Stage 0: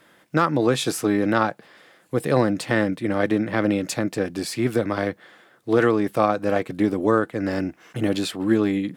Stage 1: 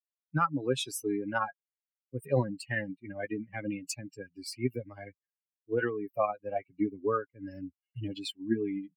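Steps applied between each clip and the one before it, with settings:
spectral dynamics exaggerated over time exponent 3
notch filter 2,000 Hz, Q 30
comb filter 7.4 ms, depth 41%
level −3.5 dB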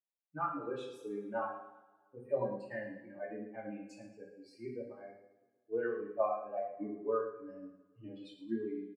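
resonant band-pass 600 Hz, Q 1.3
repeating echo 109 ms, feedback 38%, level −12 dB
coupled-rooms reverb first 0.46 s, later 1.7 s, from −20 dB, DRR −4.5 dB
level −7 dB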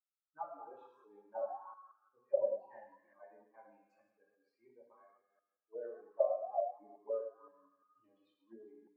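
delay that plays each chunk backwards 174 ms, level −11 dB
envelope filter 590–1,300 Hz, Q 18, down, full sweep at −31 dBFS
level +9.5 dB

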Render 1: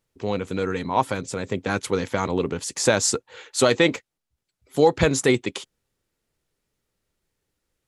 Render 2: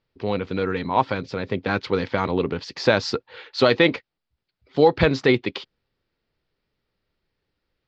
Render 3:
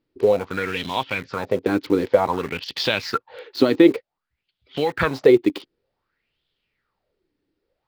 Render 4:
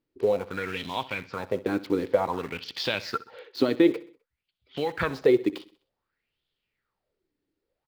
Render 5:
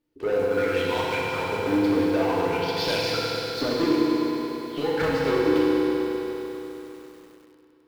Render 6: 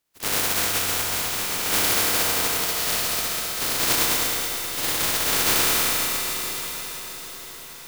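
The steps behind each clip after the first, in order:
elliptic low-pass filter 4,800 Hz, stop band 60 dB; level +2 dB
in parallel at −5 dB: bit reduction 5 bits; on the sum: downward compressor 1.5 to 1, threshold −28 dBFS, peak gain reduction 8 dB; auto-filter bell 0.54 Hz 290–3,400 Hz +18 dB; level −4 dB
repeating echo 64 ms, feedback 46%, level −18 dB; level −6.5 dB
soft clipping −25.5 dBFS, distortion −6 dB; feedback delay network reverb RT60 3.7 s, high-frequency decay 0.95×, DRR −5 dB; feedback echo at a low word length 99 ms, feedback 80%, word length 8 bits, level −11 dB; level +1 dB
compressing power law on the bin magnitudes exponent 0.14; feedback delay with all-pass diffusion 938 ms, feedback 56%, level −14.5 dB; feedback echo at a low word length 160 ms, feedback 80%, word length 8 bits, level −10 dB

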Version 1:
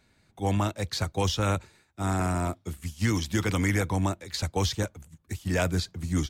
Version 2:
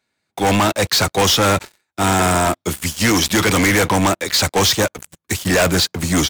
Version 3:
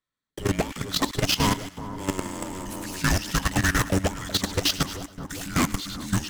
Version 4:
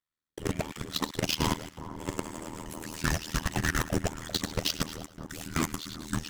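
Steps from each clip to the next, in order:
high-pass filter 440 Hz 6 dB per octave; leveller curve on the samples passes 5; level +4.5 dB
frequency shifter −380 Hz; echo with a time of its own for lows and highs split 1,400 Hz, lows 394 ms, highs 104 ms, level −8.5 dB; output level in coarse steps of 14 dB; level −6 dB
amplitude modulation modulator 79 Hz, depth 100%; level −2 dB

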